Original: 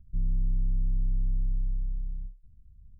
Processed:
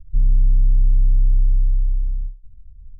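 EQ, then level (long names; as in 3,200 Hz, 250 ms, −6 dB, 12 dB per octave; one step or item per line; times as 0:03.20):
spectral tilt −4 dB per octave
−7.5 dB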